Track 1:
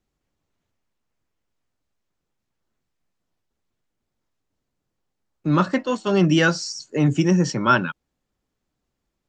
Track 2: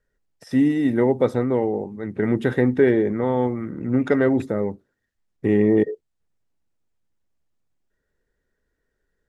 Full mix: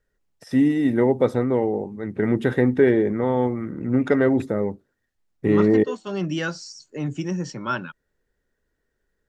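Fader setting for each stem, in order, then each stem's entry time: −9.0, 0.0 decibels; 0.00, 0.00 seconds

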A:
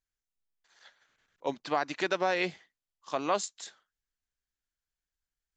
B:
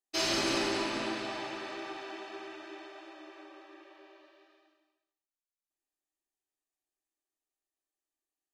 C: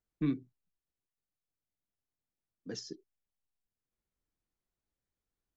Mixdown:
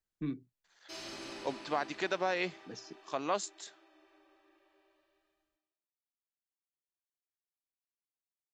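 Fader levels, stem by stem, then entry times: −4.0, −15.0, −5.5 decibels; 0.00, 0.75, 0.00 seconds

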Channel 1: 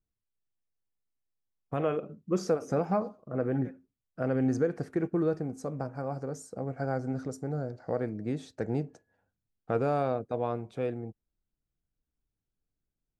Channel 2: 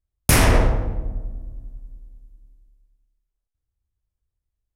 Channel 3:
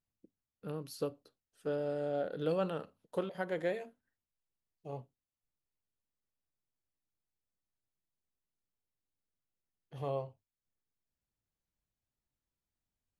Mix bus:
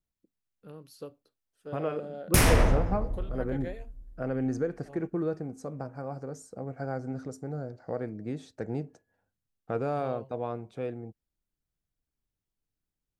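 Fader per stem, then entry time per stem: −2.5, −6.0, −6.0 decibels; 0.00, 2.05, 0.00 seconds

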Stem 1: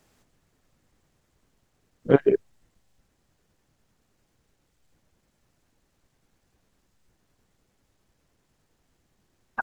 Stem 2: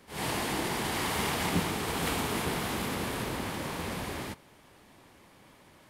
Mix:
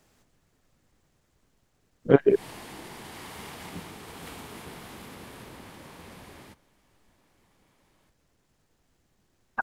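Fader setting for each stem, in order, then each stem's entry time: 0.0, −11.5 decibels; 0.00, 2.20 seconds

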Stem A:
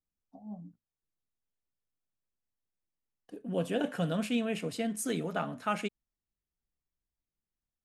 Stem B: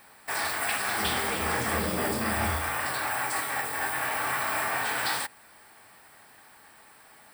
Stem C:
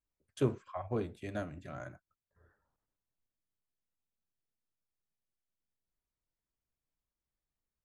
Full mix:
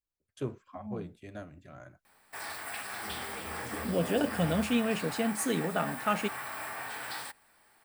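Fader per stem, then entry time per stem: +2.5, −10.5, −5.0 decibels; 0.40, 2.05, 0.00 seconds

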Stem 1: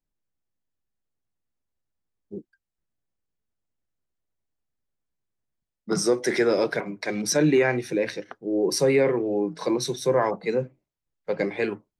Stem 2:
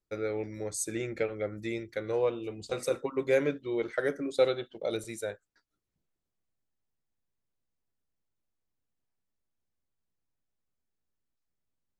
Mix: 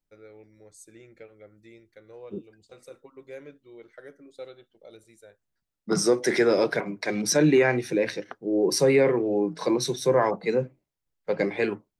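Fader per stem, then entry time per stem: +0.5, −16.0 decibels; 0.00, 0.00 seconds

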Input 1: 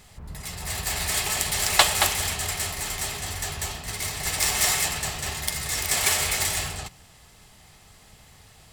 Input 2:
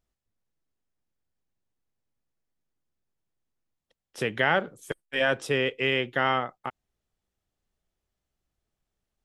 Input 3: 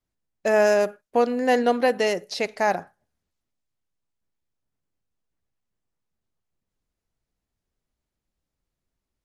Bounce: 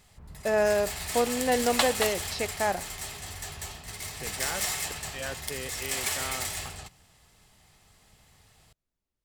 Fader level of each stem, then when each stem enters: −8.0, −13.0, −5.5 decibels; 0.00, 0.00, 0.00 seconds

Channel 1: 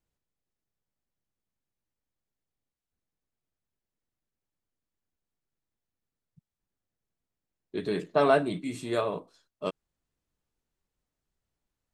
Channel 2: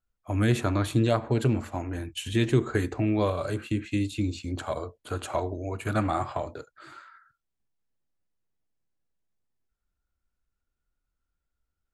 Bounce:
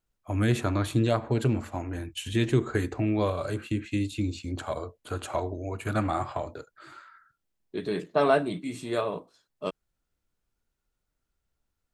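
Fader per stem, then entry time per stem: 0.0, −1.0 decibels; 0.00, 0.00 seconds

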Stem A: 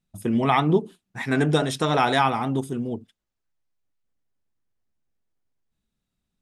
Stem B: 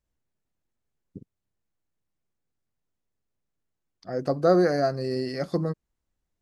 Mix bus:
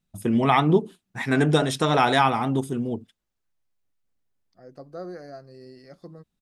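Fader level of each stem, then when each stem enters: +1.0, −17.0 decibels; 0.00, 0.50 seconds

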